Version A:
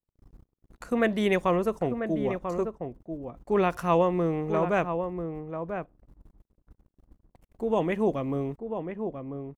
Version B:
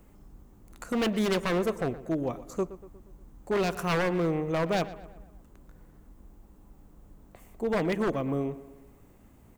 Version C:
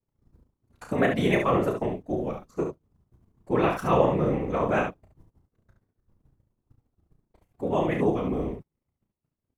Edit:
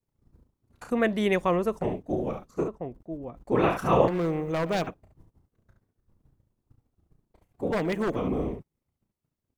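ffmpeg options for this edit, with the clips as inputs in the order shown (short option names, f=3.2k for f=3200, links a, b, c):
-filter_complex "[0:a]asplit=2[a][b];[1:a]asplit=2[c][d];[2:a]asplit=5[e][f][g][h][i];[e]atrim=end=0.902[j];[a]atrim=start=0.898:end=1.832[k];[f]atrim=start=1.828:end=2.682[l];[b]atrim=start=2.678:end=3.522[m];[g]atrim=start=3.518:end=4.082[n];[c]atrim=start=4.078:end=4.872[o];[h]atrim=start=4.868:end=7.722[p];[d]atrim=start=7.718:end=8.162[q];[i]atrim=start=8.158[r];[j][k]acrossfade=d=0.004:c1=hsin:c2=hsin[s];[s][l]acrossfade=d=0.004:c1=hsin:c2=hsin[t];[t][m]acrossfade=d=0.004:c1=hsin:c2=hsin[u];[u][n]acrossfade=d=0.004:c1=hsin:c2=hsin[v];[v][o]acrossfade=d=0.004:c1=hsin:c2=hsin[w];[w][p]acrossfade=d=0.004:c1=hsin:c2=hsin[x];[x][q]acrossfade=d=0.004:c1=hsin:c2=hsin[y];[y][r]acrossfade=d=0.004:c1=hsin:c2=hsin"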